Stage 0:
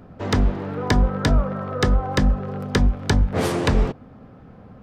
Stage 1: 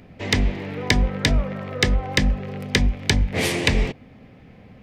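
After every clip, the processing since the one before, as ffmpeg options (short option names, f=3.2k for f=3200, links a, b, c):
-af "highshelf=f=1.7k:t=q:w=3:g=7,volume=-2dB"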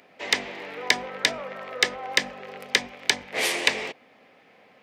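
-af "highpass=570"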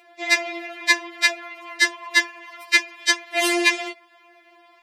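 -af "afftfilt=real='re*4*eq(mod(b,16),0)':imag='im*4*eq(mod(b,16),0)':win_size=2048:overlap=0.75,volume=6dB"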